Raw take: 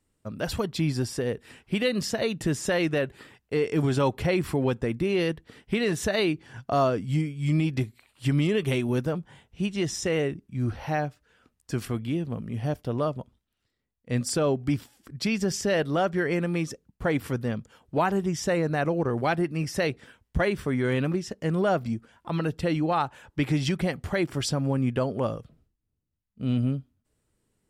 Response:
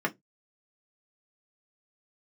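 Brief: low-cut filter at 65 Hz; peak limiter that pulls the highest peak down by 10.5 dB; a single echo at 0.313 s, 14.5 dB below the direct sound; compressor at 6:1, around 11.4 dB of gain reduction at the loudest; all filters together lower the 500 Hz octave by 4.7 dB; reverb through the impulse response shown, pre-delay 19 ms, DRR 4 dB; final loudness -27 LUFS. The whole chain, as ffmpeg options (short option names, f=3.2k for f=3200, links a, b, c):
-filter_complex "[0:a]highpass=65,equalizer=f=500:t=o:g=-6,acompressor=threshold=-34dB:ratio=6,alimiter=level_in=10dB:limit=-24dB:level=0:latency=1,volume=-10dB,aecho=1:1:313:0.188,asplit=2[a][b];[1:a]atrim=start_sample=2205,adelay=19[c];[b][c]afir=irnorm=-1:irlink=0,volume=-13.5dB[d];[a][d]amix=inputs=2:normalize=0,volume=14.5dB"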